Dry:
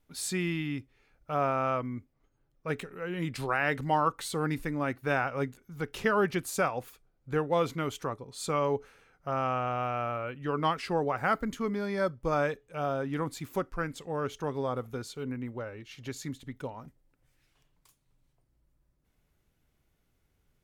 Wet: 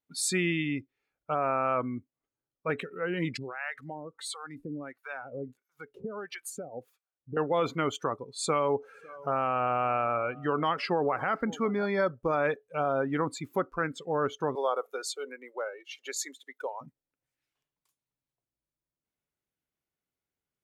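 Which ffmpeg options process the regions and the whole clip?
ffmpeg -i in.wav -filter_complex "[0:a]asettb=1/sr,asplit=3[link_01][link_02][link_03];[link_01]atrim=end=3.374[link_04];[link_02]atrim=start=3.37:end=7.37,asetpts=PTS-STARTPTS,afade=type=in:duration=0.004:curve=qsin,afade=type=out:start_time=3.996:duration=0.004:curve=qsin,acompressor=threshold=-34dB:ratio=5:attack=3.2:release=140:knee=1:detection=peak,acrossover=split=650[link_05][link_06];[link_05]aeval=exprs='val(0)*(1-1/2+1/2*cos(2*PI*1.5*n/s))':channel_layout=same[link_07];[link_06]aeval=exprs='val(0)*(1-1/2-1/2*cos(2*PI*1.5*n/s))':channel_layout=same[link_08];[link_07][link_08]amix=inputs=2:normalize=0[link_09];[link_03]atrim=start=7.366[link_10];[link_04][link_09]acrossfade=duration=0.004:curve1=hsin:curve2=qsin[link_11];[link_11][link_10]acrossfade=duration=0.004:curve1=qsin:curve2=hsin,asettb=1/sr,asplit=3[link_12][link_13][link_14];[link_12]atrim=end=8.394[link_15];[link_13]atrim=start=8.39:end=11.86,asetpts=PTS-STARTPTS,afade=type=in:duration=0.004:curve=qsin,afade=type=out:start_time=3.466:duration=0.004:curve=qsin,acompressor=mode=upward:threshold=-39dB:ratio=2.5:attack=3.2:release=140:knee=2.83:detection=peak,aecho=1:1:551:0.0841,atrim=end_sample=153027[link_16];[link_14]atrim=start=11.856[link_17];[link_15][link_16]acrossfade=duration=0.004:curve1=hsin:curve2=qsin[link_18];[link_18][link_17]acrossfade=duration=0.004:curve1=qsin:curve2=hsin,asettb=1/sr,asplit=3[link_19][link_20][link_21];[link_19]atrim=end=14.554[link_22];[link_20]atrim=start=14.55:end=16.81,asetpts=PTS-STARTPTS,afade=type=in:duration=0.004:curve=qsin,afade=type=out:start_time=2.256:duration=0.004:curve=qsin,highpass=frequency=420:width=0.5412,highpass=frequency=420:width=1.3066,highshelf=frequency=4900:gain=9[link_23];[link_21]atrim=start=16.806[link_24];[link_22][link_23]acrossfade=duration=0.004:curve1=hsin:curve2=qsin[link_25];[link_25][link_24]acrossfade=duration=0.004:curve1=qsin:curve2=hsin,highpass=frequency=280:poles=1,afftdn=noise_reduction=20:noise_floor=-44,alimiter=limit=-23.5dB:level=0:latency=1:release=46,volume=6dB" out.wav

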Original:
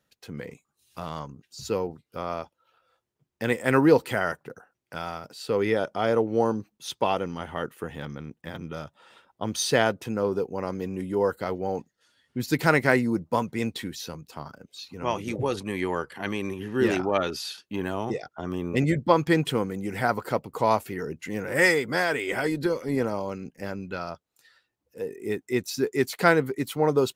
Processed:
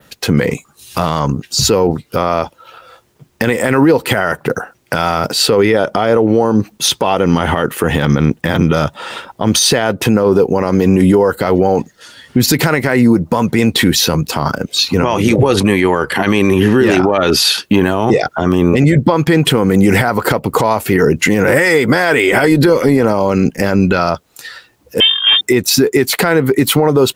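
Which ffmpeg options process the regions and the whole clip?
ffmpeg -i in.wav -filter_complex "[0:a]asettb=1/sr,asplit=3[link_01][link_02][link_03];[link_01]atrim=end=25.004[link_04];[link_02]atrim=start=25:end=25.41,asetpts=PTS-STARTPTS,afade=type=in:duration=0.004:curve=qsin,afade=type=out:start_time=0.406:duration=0.004:curve=qsin,lowshelf=frequency=310:width_type=q:width=1.5:gain=-13,aeval=exprs='(tanh(31.6*val(0)+0.65)-tanh(0.65))/31.6':channel_layout=same,lowpass=frequency=3100:width_type=q:width=0.5098,lowpass=frequency=3100:width_type=q:width=0.6013,lowpass=frequency=3100:width_type=q:width=0.9,lowpass=frequency=3100:width_type=q:width=2.563,afreqshift=-3600[link_05];[link_03]atrim=start=25.406[link_06];[link_04][link_05]acrossfade=duration=0.004:curve1=hsin:curve2=qsin[link_07];[link_07][link_06]acrossfade=duration=0.004:curve1=qsin:curve2=hsin,adynamicequalizer=threshold=0.00282:dfrequency=6100:dqfactor=1.2:tfrequency=6100:tqfactor=1.2:attack=5:release=100:ratio=0.375:range=2:mode=cutabove:tftype=bell,acompressor=threshold=-29dB:ratio=10,alimiter=level_in=29dB:limit=-1dB:release=50:level=0:latency=1,volume=-1dB" out.wav

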